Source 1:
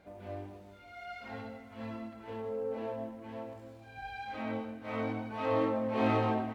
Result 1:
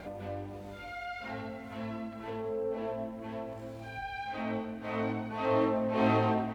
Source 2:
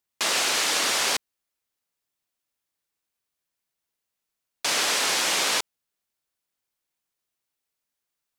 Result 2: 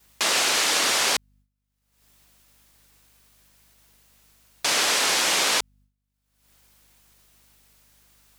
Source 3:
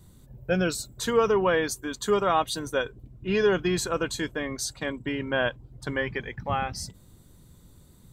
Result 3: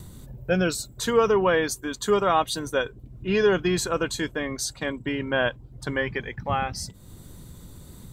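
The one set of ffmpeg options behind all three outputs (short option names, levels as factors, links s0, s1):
-af "acompressor=mode=upward:threshold=0.0158:ratio=2.5,aeval=exprs='val(0)+0.000708*(sin(2*PI*50*n/s)+sin(2*PI*2*50*n/s)/2+sin(2*PI*3*50*n/s)/3+sin(2*PI*4*50*n/s)/4+sin(2*PI*5*50*n/s)/5)':c=same,agate=range=0.0224:threshold=0.00251:ratio=3:detection=peak,volume=1.26"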